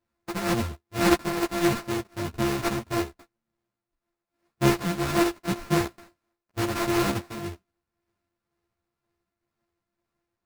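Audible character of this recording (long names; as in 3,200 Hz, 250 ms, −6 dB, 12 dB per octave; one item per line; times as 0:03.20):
a buzz of ramps at a fixed pitch in blocks of 128 samples
tremolo triangle 2 Hz, depth 45%
aliases and images of a low sample rate 3,200 Hz, jitter 20%
a shimmering, thickened sound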